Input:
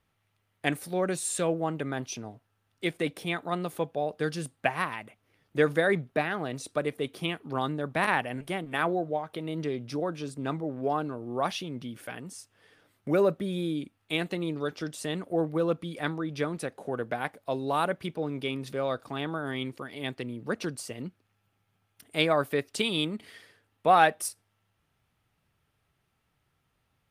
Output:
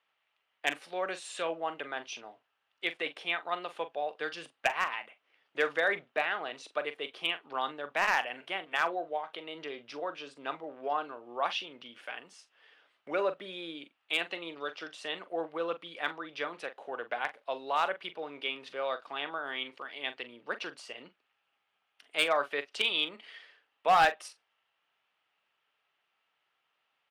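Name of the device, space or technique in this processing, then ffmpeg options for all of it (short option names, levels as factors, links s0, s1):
megaphone: -filter_complex "[0:a]highpass=680,lowpass=3800,equalizer=f=2900:t=o:w=0.41:g=6,asoftclip=type=hard:threshold=0.133,asplit=2[s0][s1];[s1]adelay=42,volume=0.237[s2];[s0][s2]amix=inputs=2:normalize=0"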